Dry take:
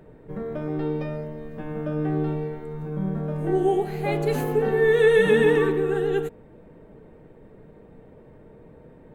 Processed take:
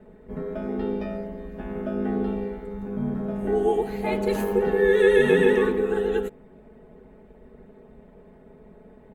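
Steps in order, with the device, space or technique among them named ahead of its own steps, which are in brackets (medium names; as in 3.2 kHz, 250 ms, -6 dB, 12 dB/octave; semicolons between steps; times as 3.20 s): ring-modulated robot voice (ring modulator 48 Hz; comb 4.7 ms, depth 82%)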